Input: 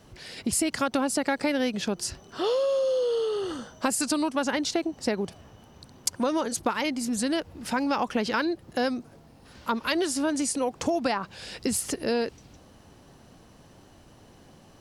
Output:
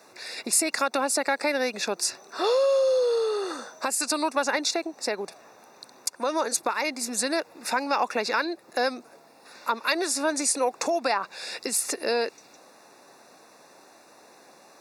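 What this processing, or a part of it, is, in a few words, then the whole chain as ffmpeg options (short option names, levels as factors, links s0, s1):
PA system with an anti-feedback notch: -af "highpass=110,asuperstop=centerf=3100:order=20:qfactor=5.1,alimiter=limit=0.158:level=0:latency=1:release=425,highpass=490,volume=1.88"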